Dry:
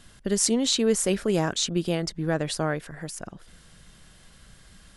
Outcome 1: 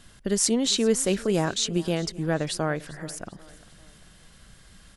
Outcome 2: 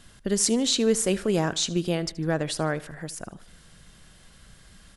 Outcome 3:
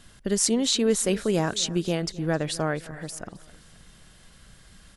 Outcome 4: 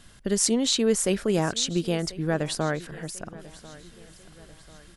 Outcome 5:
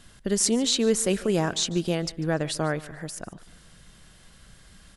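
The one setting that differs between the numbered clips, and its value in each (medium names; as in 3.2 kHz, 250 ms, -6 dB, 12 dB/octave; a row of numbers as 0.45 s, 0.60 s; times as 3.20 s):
feedback delay, time: 396 ms, 76 ms, 263 ms, 1042 ms, 146 ms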